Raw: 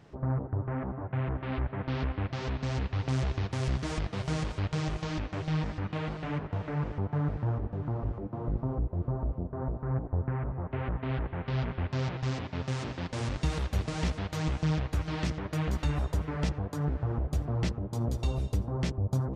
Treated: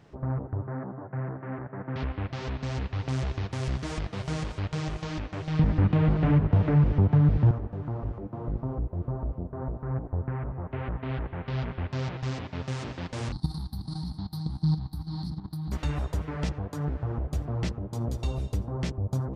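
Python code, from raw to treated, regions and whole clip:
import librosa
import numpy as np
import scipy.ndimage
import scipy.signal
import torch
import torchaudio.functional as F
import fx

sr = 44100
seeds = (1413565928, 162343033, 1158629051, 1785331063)

y = fx.chain(x, sr, fx.cheby1_bandpass(low_hz=130.0, high_hz=1800.0, order=3),
    fx.air_absorb(metres=190.0), at=(0.67, 1.96))
y = fx.chain(y, sr, fx.lowpass(hz=5000.0, slope=12),
    fx.low_shelf(hz=380.0, db=12.0),
    fx.band_squash(depth_pct=100), at=(5.59, 7.51))
y = fx.chain(y, sr, fx.curve_eq(hz=(100.0, 170.0, 330.0, 530.0, 810.0, 2700.0, 4300.0, 6900.0, 9800.0), db=(0, 8, -3, -27, 0, -29, 11, -21, 8)),
    fx.level_steps(step_db=11), at=(13.32, 15.72))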